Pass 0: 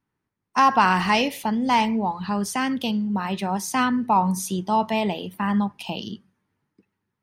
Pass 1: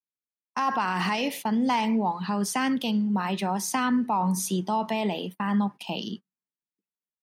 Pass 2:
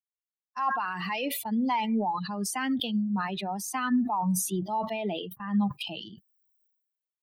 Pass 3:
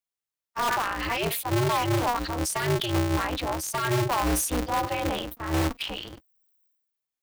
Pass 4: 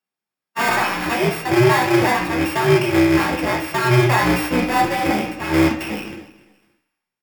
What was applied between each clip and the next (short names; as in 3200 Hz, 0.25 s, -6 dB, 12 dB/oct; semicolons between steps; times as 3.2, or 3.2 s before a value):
limiter -17 dBFS, peak gain reduction 10.5 dB; HPF 150 Hz 24 dB/oct; gate -36 dBFS, range -29 dB
per-bin expansion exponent 2; dynamic EQ 5100 Hz, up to -7 dB, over -54 dBFS, Q 2.2; sustainer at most 52 dB/s
in parallel at -6 dB: wrapped overs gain 22 dB; on the sum: polarity switched at an audio rate 120 Hz
sample sorter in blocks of 16 samples; feedback echo 0.285 s, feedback 29%, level -19 dB; reverb RT60 0.50 s, pre-delay 3 ms, DRR 0 dB